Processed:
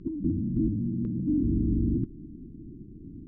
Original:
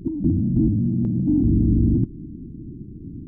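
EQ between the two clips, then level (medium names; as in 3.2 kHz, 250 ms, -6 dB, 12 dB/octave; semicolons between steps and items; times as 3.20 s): Butterworth band-stop 730 Hz, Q 1.3; distance through air 130 m; peaking EQ 110 Hz -7 dB 2.6 oct; -3.0 dB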